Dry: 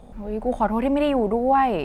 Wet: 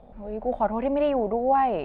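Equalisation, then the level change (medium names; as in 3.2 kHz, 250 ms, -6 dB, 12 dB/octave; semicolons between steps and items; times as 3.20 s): distance through air 420 m; peaking EQ 640 Hz +8 dB 0.89 oct; treble shelf 2.9 kHz +11.5 dB; -6.5 dB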